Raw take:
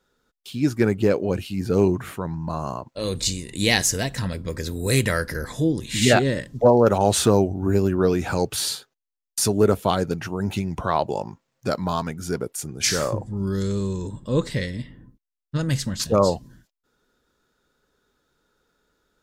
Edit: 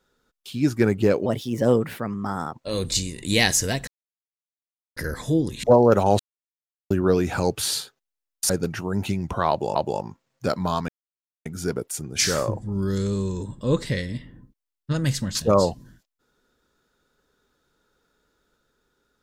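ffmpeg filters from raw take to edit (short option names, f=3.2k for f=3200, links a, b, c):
-filter_complex "[0:a]asplit=11[a][b][c][d][e][f][g][h][i][j][k];[a]atrim=end=1.264[l];[b]atrim=start=1.26:end=2.84,asetpts=PTS-STARTPTS,asetrate=54684,aresample=44100[m];[c]atrim=start=2.836:end=4.18,asetpts=PTS-STARTPTS,afade=t=out:st=1.34:d=0.004:c=hsin[n];[d]atrim=start=4.18:end=5.27,asetpts=PTS-STARTPTS,volume=0[o];[e]atrim=start=5.27:end=5.942,asetpts=PTS-STARTPTS,afade=t=in:d=0.004:c=hsin[p];[f]atrim=start=6.578:end=7.14,asetpts=PTS-STARTPTS,afade=t=out:st=0.558:d=0.004:c=hsin[q];[g]atrim=start=7.14:end=7.85,asetpts=PTS-STARTPTS,volume=0[r];[h]atrim=start=7.85:end=9.442,asetpts=PTS-STARTPTS,afade=t=in:d=0.004:c=hsin[s];[i]atrim=start=9.968:end=11.232[t];[j]atrim=start=10.968:end=12.1,asetpts=PTS-STARTPTS,afade=t=out:st=1.128:d=0.004:c=hsin,apad=pad_dur=0.57[u];[k]atrim=start=12.1,asetpts=PTS-STARTPTS,afade=t=in:d=0.004:c=hsin[v];[l][m]acrossfade=d=0.004:c1=hsin:c2=hsin[w];[n][o][p]concat=n=3:v=0:a=1[x];[w][x]acrossfade=d=0.004:c1=hsin:c2=hsin[y];[q][r][s]concat=n=3:v=0:a=1[z];[y][z]acrossfade=d=0.004:c1=hsin:c2=hsin[aa];[aa][t]acrossfade=d=0.004:c1=hsin:c2=hsin[ab];[u][v]concat=n=2:v=0:a=1[ac];[ab][ac]acrossfade=d=0.004:c1=hsin:c2=hsin"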